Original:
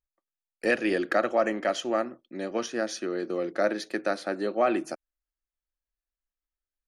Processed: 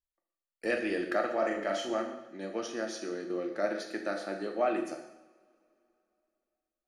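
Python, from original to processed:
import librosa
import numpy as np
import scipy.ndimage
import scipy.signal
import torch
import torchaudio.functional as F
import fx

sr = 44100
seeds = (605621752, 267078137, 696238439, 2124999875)

y = fx.doubler(x, sr, ms=40.0, db=-5.0, at=(1.37, 1.94))
y = fx.rev_double_slope(y, sr, seeds[0], early_s=0.8, late_s=3.1, knee_db=-25, drr_db=2.5)
y = y * 10.0 ** (-7.5 / 20.0)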